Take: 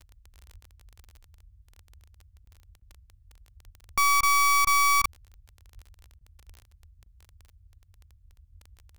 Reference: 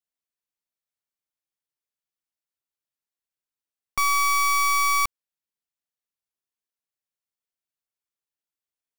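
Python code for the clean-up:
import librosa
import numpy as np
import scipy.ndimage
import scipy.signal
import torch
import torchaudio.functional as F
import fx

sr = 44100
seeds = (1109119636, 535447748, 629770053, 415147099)

y = fx.fix_declick_ar(x, sr, threshold=6.5)
y = fx.fix_deplosive(y, sr, at_s=(0.53, 3.64, 4.97, 5.74, 6.47))
y = fx.fix_interpolate(y, sr, at_s=(2.45, 2.8, 4.21, 4.65, 5.02, 6.19, 7.04), length_ms=19.0)
y = fx.noise_reduce(y, sr, print_start_s=2.32, print_end_s=2.82, reduce_db=30.0)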